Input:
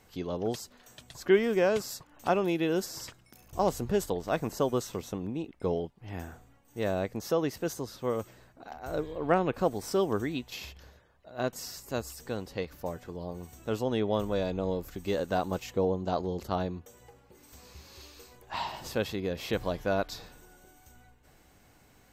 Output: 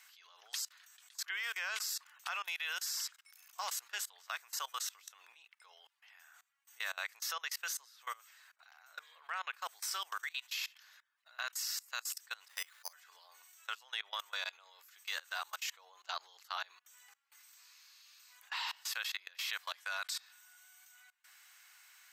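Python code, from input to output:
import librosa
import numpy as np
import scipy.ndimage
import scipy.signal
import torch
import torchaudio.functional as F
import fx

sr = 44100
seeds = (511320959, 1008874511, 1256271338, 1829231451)

y = fx.resample_bad(x, sr, factor=8, down='filtered', up='hold', at=(12.48, 12.93))
y = fx.peak_eq(y, sr, hz=8500.0, db=13.5, octaves=0.35, at=(19.8, 20.2))
y = scipy.signal.sosfilt(scipy.signal.cheby2(4, 80, 220.0, 'highpass', fs=sr, output='sos'), y)
y = fx.level_steps(y, sr, step_db=23)
y = y * librosa.db_to_amplitude(7.5)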